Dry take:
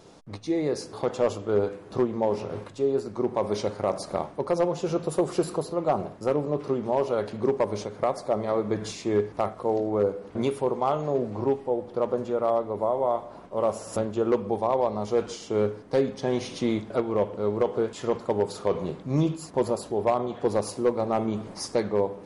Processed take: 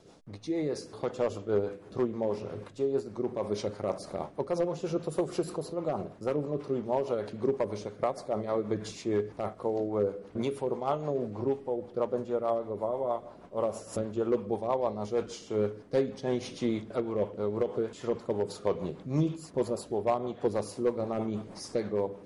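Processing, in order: rotary speaker horn 6.3 Hz; gain -3 dB

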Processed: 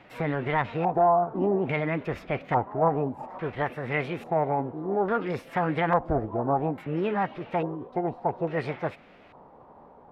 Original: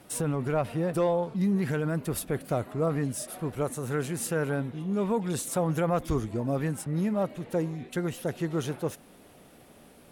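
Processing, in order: LFO low-pass square 0.59 Hz 680–1700 Hz; formant shift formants +6 st

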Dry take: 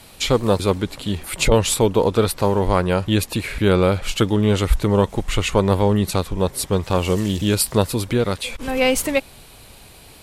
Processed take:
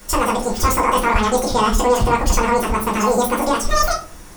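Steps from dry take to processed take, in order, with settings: limiter -11 dBFS, peak gain reduction 7.5 dB; reverb RT60 0.70 s, pre-delay 5 ms, DRR -3 dB; speed mistake 33 rpm record played at 78 rpm; gain -2 dB

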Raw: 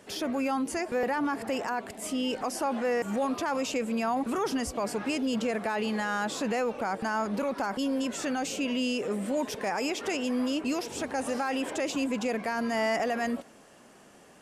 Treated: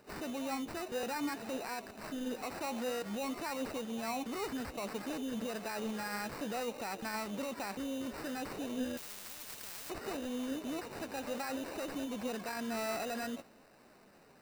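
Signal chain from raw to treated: in parallel at -2.5 dB: limiter -29.5 dBFS, peak gain reduction 9 dB; on the sum: sample-rate reducer 3300 Hz, jitter 0%; flange 0.58 Hz, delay 2 ms, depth 8.9 ms, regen +77%; 8.97–9.9 spectral compressor 10:1; gain -7 dB

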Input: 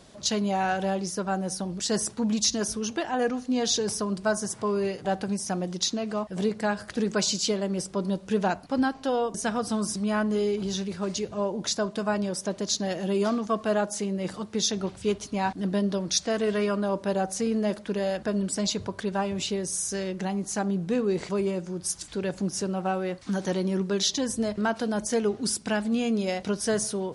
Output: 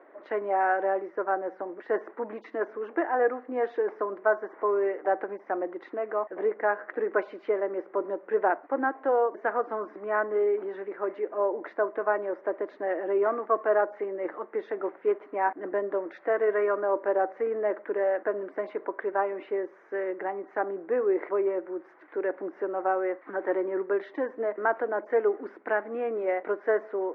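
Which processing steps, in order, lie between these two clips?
Chebyshev band-pass 310–2000 Hz, order 4; gain +3 dB

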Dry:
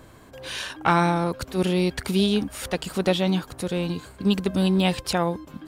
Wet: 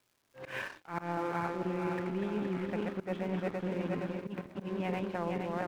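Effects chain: regenerating reverse delay 0.234 s, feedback 73%, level -4 dB; vocal rider 2 s; elliptic band-pass 100–2200 Hz; reverse; compressor 8:1, threshold -29 dBFS, peak gain reduction 16.5 dB; reverse; low shelf 140 Hz -5 dB; crossover distortion -48 dBFS; gate -49 dBFS, range -25 dB; auto swell 0.116 s; on a send: echo 0.525 s -23 dB; on the sum: crackle 580/s -60 dBFS

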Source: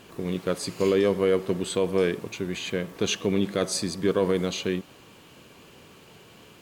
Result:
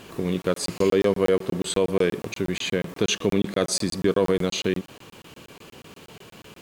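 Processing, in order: in parallel at -1 dB: compressor, threshold -29 dBFS, peak gain reduction 11 dB; on the sum: crackling interface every 0.12 s, samples 1024, zero, from 0.42

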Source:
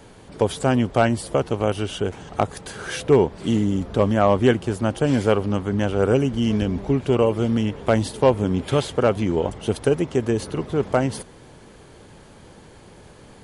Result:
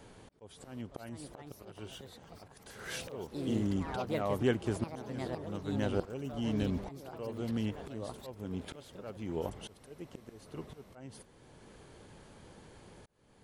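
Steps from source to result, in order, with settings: auto swell 0.793 s; echoes that change speed 0.587 s, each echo +4 st, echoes 3, each echo -6 dB; gain -8.5 dB

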